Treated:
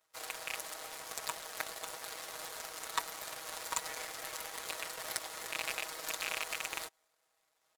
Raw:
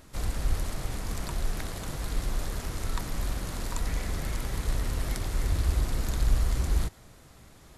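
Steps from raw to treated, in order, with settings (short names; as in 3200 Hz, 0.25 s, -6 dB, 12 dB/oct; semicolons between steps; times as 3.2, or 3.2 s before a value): rattling part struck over -22 dBFS, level -24 dBFS; HPF 520 Hz 24 dB/oct; comb 6.3 ms, depth 92%; power-law curve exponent 2; soft clip -31 dBFS, distortion -11 dB; gain +14 dB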